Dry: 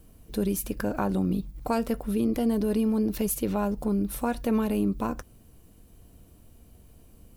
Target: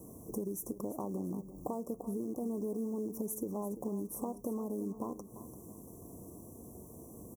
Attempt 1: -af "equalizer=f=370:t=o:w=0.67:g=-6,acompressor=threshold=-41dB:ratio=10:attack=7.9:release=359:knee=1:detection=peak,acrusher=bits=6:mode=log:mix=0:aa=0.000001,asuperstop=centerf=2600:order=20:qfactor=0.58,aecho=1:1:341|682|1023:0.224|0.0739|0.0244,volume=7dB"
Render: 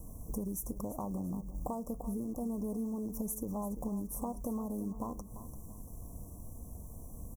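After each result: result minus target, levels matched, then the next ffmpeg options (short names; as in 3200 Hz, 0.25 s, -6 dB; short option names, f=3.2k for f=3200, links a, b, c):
125 Hz band +4.0 dB; 500 Hz band -3.0 dB
-af "equalizer=f=370:t=o:w=0.67:g=-6,acompressor=threshold=-41dB:ratio=10:attack=7.9:release=359:knee=1:detection=peak,highpass=130,acrusher=bits=6:mode=log:mix=0:aa=0.000001,asuperstop=centerf=2600:order=20:qfactor=0.58,aecho=1:1:341|682|1023:0.224|0.0739|0.0244,volume=7dB"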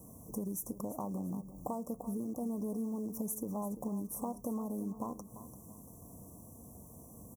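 500 Hz band -3.5 dB
-af "equalizer=f=370:t=o:w=0.67:g=5.5,acompressor=threshold=-41dB:ratio=10:attack=7.9:release=359:knee=1:detection=peak,highpass=130,acrusher=bits=6:mode=log:mix=0:aa=0.000001,asuperstop=centerf=2600:order=20:qfactor=0.58,aecho=1:1:341|682|1023:0.224|0.0739|0.0244,volume=7dB"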